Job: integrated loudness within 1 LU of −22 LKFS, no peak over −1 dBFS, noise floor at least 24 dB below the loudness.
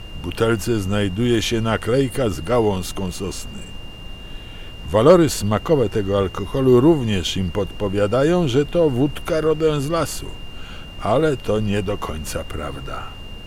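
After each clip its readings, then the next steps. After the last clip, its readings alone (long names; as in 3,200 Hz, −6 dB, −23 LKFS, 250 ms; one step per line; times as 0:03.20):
interfering tone 2,800 Hz; level of the tone −40 dBFS; background noise floor −36 dBFS; target noise floor −44 dBFS; integrated loudness −19.5 LKFS; sample peak −2.5 dBFS; target loudness −22.0 LKFS
→ notch filter 2,800 Hz, Q 30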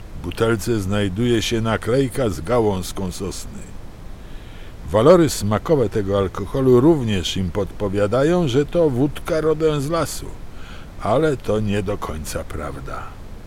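interfering tone none found; background noise floor −37 dBFS; target noise floor −44 dBFS
→ noise reduction from a noise print 7 dB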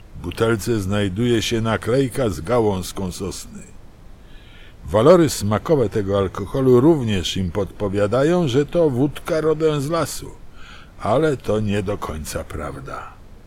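background noise floor −43 dBFS; target noise floor −44 dBFS
→ noise reduction from a noise print 6 dB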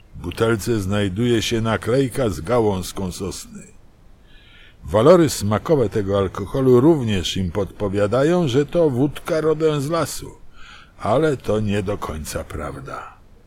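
background noise floor −49 dBFS; integrated loudness −19.5 LKFS; sample peak −2.5 dBFS; target loudness −22.0 LKFS
→ level −2.5 dB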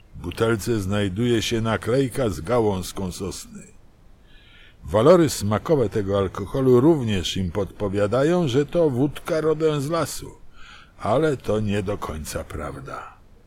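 integrated loudness −22.0 LKFS; sample peak −5.0 dBFS; background noise floor −51 dBFS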